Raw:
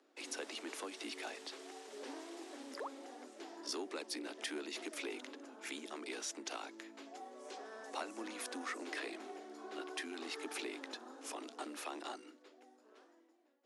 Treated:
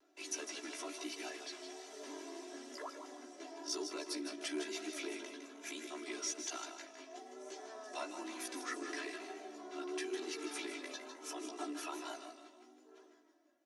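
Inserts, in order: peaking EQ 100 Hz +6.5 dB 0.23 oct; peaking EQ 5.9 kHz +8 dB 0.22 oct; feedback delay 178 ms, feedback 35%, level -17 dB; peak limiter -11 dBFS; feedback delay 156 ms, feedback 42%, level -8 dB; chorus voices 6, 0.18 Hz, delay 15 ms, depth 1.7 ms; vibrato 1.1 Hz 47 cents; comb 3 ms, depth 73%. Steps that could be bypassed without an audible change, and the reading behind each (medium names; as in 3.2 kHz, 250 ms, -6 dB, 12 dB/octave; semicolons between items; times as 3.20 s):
peaking EQ 100 Hz: input has nothing below 190 Hz; peak limiter -11 dBFS: peak at its input -23.5 dBFS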